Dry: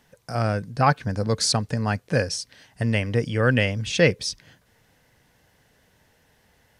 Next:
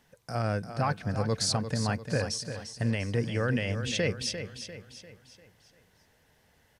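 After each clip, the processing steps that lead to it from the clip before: peak limiter -14 dBFS, peak gain reduction 8.5 dB; on a send: feedback delay 347 ms, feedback 45%, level -9.5 dB; on the sum: trim -4.5 dB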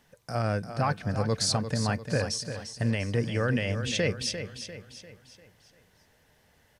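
feedback comb 600 Hz, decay 0.16 s, harmonics all, mix 40%; trim +5.5 dB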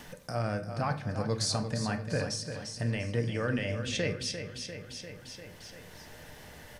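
upward compressor, threshold -29 dBFS; gate with hold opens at -36 dBFS; on a send at -7.5 dB: reverberation RT60 0.55 s, pre-delay 3 ms; on the sum: trim -4.5 dB

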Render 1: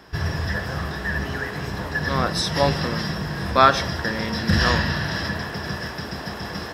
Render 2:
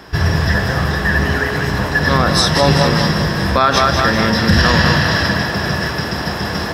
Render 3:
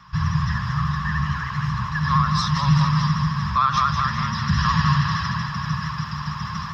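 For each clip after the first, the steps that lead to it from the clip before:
two-band feedback delay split 330 Hz, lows 80 ms, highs 198 ms, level -7.5 dB; loudness maximiser +10.5 dB; trim -1 dB
FFT filter 100 Hz 0 dB, 150 Hz +9 dB, 360 Hz -30 dB, 730 Hz -18 dB, 1.1 kHz +11 dB, 1.5 kHz -4 dB, 3.2 kHz -2 dB, 6.8 kHz -5 dB, 9.8 kHz -30 dB, 15 kHz -11 dB; vibrato 13 Hz 56 cents; trim -9 dB

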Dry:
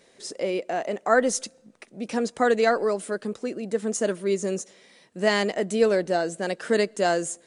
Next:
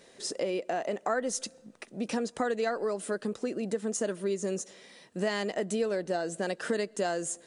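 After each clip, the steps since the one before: band-stop 2.2 kHz, Q 17; compression 4:1, threshold -30 dBFS, peak gain reduction 13 dB; trim +1.5 dB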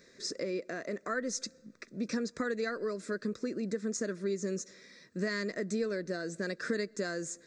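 static phaser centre 3 kHz, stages 6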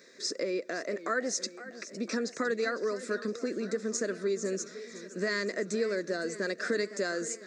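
high-pass 270 Hz 12 dB/octave; modulated delay 508 ms, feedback 66%, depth 163 cents, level -15 dB; trim +4 dB

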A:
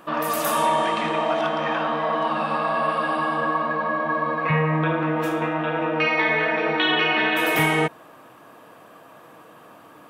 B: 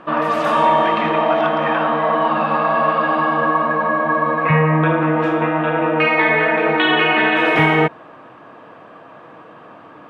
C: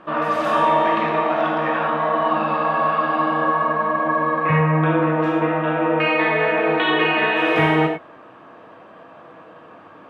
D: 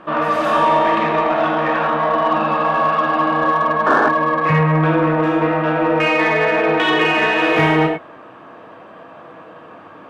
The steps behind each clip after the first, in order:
low-pass 2.7 kHz 12 dB/octave; trim +6.5 dB
gated-style reverb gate 120 ms flat, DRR 1.5 dB; trim -5 dB
painted sound noise, 3.86–4.09 s, 220–1800 Hz -17 dBFS; in parallel at -4 dB: saturation -19 dBFS, distortion -10 dB

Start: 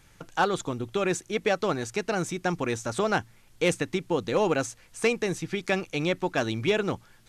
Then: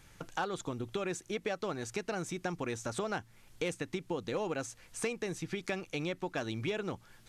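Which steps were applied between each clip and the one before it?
compression 3:1, threshold -34 dBFS, peak gain reduction 11.5 dB; trim -1 dB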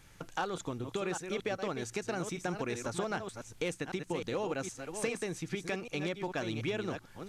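chunks repeated in reverse 392 ms, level -7 dB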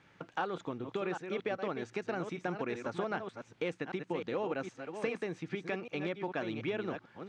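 band-pass 160–2800 Hz

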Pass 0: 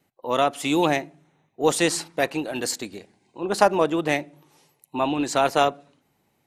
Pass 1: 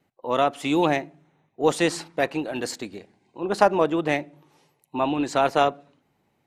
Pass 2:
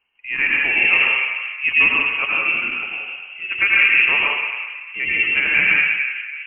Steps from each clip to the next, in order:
treble shelf 5.4 kHz -11 dB
plate-style reverb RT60 2.1 s, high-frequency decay 0.35×, pre-delay 75 ms, DRR -5.5 dB; frequency inversion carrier 3 kHz; trim -1.5 dB

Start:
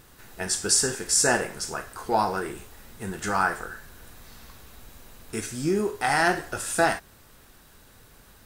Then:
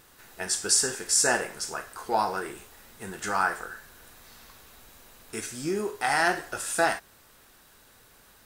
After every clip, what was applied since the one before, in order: bass shelf 260 Hz -9.5 dB; trim -1 dB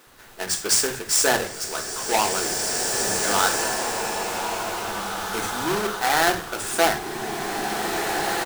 square wave that keeps the level; bands offset in time highs, lows 70 ms, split 200 Hz; swelling reverb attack 2320 ms, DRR 0.5 dB

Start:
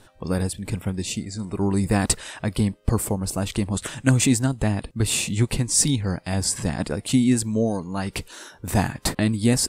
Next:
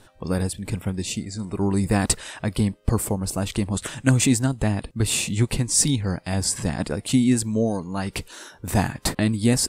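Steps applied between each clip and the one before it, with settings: no audible change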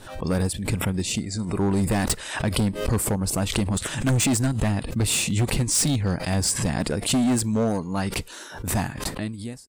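fade out at the end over 1.44 s; overload inside the chain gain 19.5 dB; swell ahead of each attack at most 78 dB/s; trim +1.5 dB

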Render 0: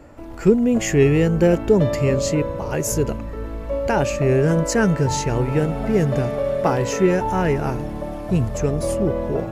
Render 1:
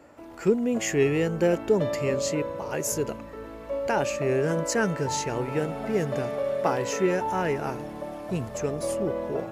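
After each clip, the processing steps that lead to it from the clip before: high-pass 330 Hz 6 dB/octave; trim -4 dB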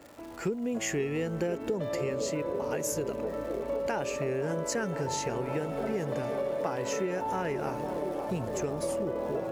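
crackle 230 per s -41 dBFS; feedback echo behind a band-pass 513 ms, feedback 81%, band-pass 490 Hz, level -11 dB; compression, threshold -28 dBFS, peak gain reduction 11.5 dB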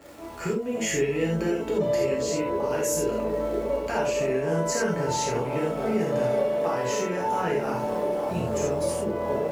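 gated-style reverb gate 110 ms flat, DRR -4 dB

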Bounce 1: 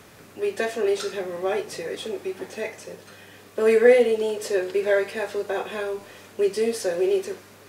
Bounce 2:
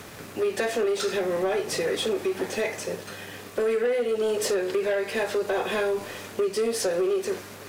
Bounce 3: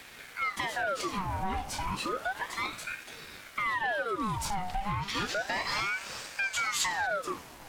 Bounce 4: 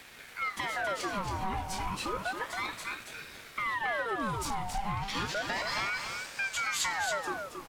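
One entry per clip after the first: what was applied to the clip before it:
compression 10:1, threshold -27 dBFS, peak gain reduction 17 dB; waveshaping leveller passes 2
time-frequency box 5.02–7.06 s, 2.5–6.9 kHz +10 dB; ring modulator with a swept carrier 1.2 kHz, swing 70%, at 0.32 Hz; trim -4 dB
delay 274 ms -6 dB; trim -2 dB

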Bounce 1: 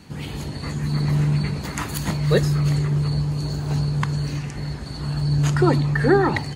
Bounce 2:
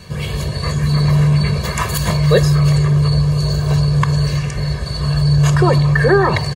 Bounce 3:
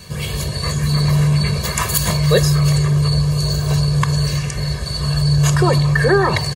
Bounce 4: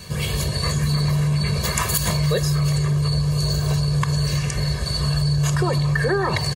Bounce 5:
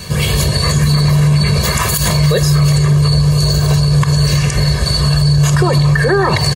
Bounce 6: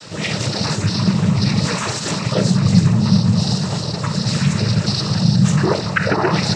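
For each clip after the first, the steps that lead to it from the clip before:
comb 1.8 ms, depth 89%; dynamic bell 860 Hz, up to +4 dB, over -37 dBFS, Q 2; in parallel at +3 dB: peak limiter -14.5 dBFS, peak gain reduction 11.5 dB; on the sum: trim -1 dB
treble shelf 4.8 kHz +10.5 dB; trim -2 dB
compression, threshold -17 dBFS, peak gain reduction 8.5 dB
loudness maximiser +13 dB; trim -3 dB
reverberation RT60 0.30 s, pre-delay 5 ms, DRR -5 dB; flange 0.51 Hz, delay 3.3 ms, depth 2.5 ms, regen -48%; noise-vocoded speech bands 12; trim -7.5 dB

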